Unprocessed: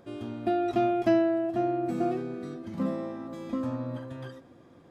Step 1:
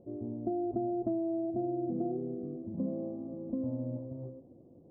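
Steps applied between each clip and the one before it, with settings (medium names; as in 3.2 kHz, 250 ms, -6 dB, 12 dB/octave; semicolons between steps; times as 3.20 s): inverse Chebyshev low-pass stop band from 1.6 kHz, stop band 50 dB; compression, threshold -28 dBFS, peak gain reduction 8.5 dB; trim -1.5 dB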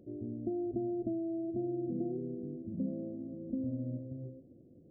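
boxcar filter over 48 samples; pre-echo 83 ms -21 dB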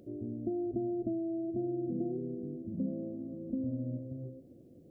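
tape noise reduction on one side only encoder only; trim +1 dB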